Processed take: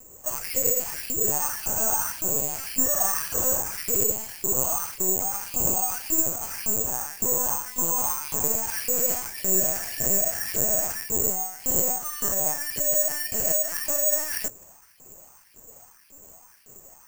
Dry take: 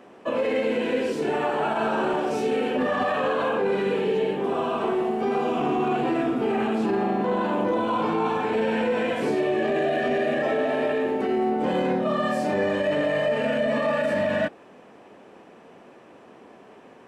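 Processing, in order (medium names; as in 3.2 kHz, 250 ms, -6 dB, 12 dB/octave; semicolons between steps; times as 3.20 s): LFO high-pass saw up 1.8 Hz 210–2700 Hz; LPC vocoder at 8 kHz pitch kept; careless resampling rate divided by 6×, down none, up zero stuff; trim -10.5 dB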